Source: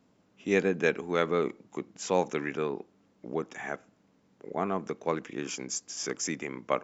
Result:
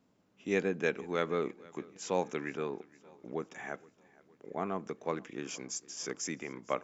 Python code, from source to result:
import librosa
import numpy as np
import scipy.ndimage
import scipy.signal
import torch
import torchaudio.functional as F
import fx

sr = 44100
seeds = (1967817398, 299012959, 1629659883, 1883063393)

y = fx.echo_feedback(x, sr, ms=467, feedback_pct=56, wet_db=-23.0)
y = y * librosa.db_to_amplitude(-5.0)